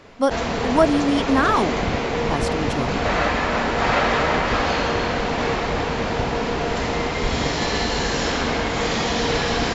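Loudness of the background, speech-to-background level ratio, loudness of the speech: −22.0 LKFS, −0.5 dB, −22.5 LKFS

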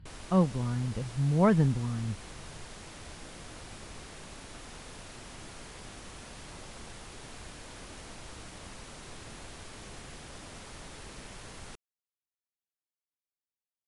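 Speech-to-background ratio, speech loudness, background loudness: 17.5 dB, −28.5 LKFS, −46.0 LKFS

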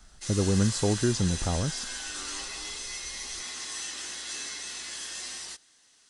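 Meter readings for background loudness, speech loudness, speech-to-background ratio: −34.5 LKFS, −28.0 LKFS, 6.5 dB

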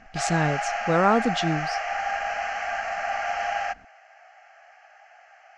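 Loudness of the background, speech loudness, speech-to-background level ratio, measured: −28.0 LKFS, −24.5 LKFS, 3.5 dB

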